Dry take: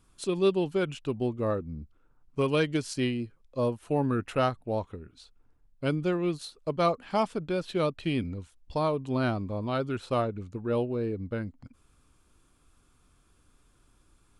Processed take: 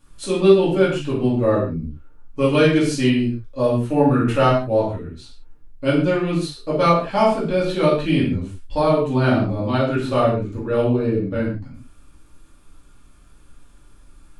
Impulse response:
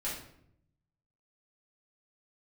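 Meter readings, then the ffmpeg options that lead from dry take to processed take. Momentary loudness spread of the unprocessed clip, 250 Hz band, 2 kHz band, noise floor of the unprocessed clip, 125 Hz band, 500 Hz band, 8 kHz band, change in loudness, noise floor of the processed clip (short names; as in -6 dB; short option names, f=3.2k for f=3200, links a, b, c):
9 LU, +11.0 dB, +10.5 dB, -65 dBFS, +11.0 dB, +10.5 dB, +8.5 dB, +10.5 dB, -49 dBFS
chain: -filter_complex "[1:a]atrim=start_sample=2205,afade=t=out:st=0.22:d=0.01,atrim=end_sample=10143[a];[0:a][a]afir=irnorm=-1:irlink=0,volume=7dB"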